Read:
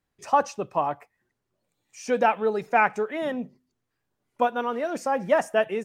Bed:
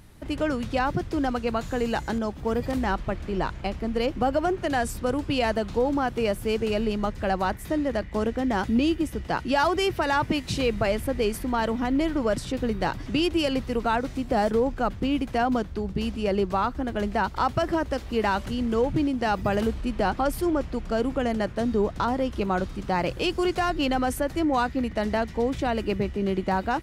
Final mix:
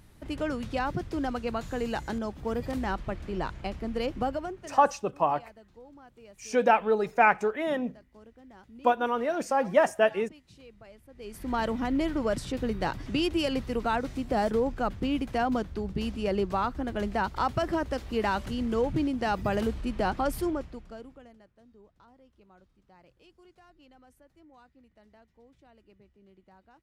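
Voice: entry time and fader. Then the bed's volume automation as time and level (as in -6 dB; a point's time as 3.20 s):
4.45 s, -0.5 dB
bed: 4.24 s -5 dB
5.02 s -27 dB
11.08 s -27 dB
11.51 s -3.5 dB
20.43 s -3.5 dB
21.49 s -33 dB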